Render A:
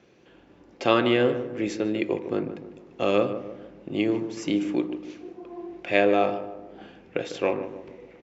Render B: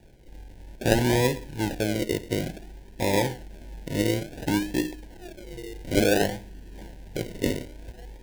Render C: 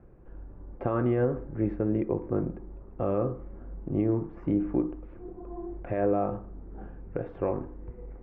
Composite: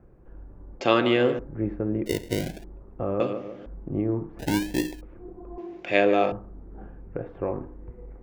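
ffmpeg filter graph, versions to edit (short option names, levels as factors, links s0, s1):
-filter_complex "[0:a]asplit=3[s0][s1][s2];[1:a]asplit=2[s3][s4];[2:a]asplit=6[s5][s6][s7][s8][s9][s10];[s5]atrim=end=0.812[s11];[s0]atrim=start=0.808:end=1.392[s12];[s6]atrim=start=1.388:end=2.062[s13];[s3]atrim=start=2.058:end=2.642[s14];[s7]atrim=start=2.638:end=3.202[s15];[s1]atrim=start=3.198:end=3.662[s16];[s8]atrim=start=3.658:end=4.392[s17];[s4]atrim=start=4.388:end=5.012[s18];[s9]atrim=start=5.008:end=5.582[s19];[s2]atrim=start=5.578:end=6.322[s20];[s10]atrim=start=6.318[s21];[s11][s12]acrossfade=d=0.004:c1=hsin:c2=hsin[s22];[s22][s13]acrossfade=d=0.004:c1=hsin:c2=hsin[s23];[s23][s14]acrossfade=d=0.004:c1=hsin:c2=hsin[s24];[s24][s15]acrossfade=d=0.004:c1=hsin:c2=hsin[s25];[s25][s16]acrossfade=d=0.004:c1=hsin:c2=hsin[s26];[s26][s17]acrossfade=d=0.004:c1=hsin:c2=hsin[s27];[s27][s18]acrossfade=d=0.004:c1=hsin:c2=hsin[s28];[s28][s19]acrossfade=d=0.004:c1=hsin:c2=hsin[s29];[s29][s20]acrossfade=d=0.004:c1=hsin:c2=hsin[s30];[s30][s21]acrossfade=d=0.004:c1=hsin:c2=hsin"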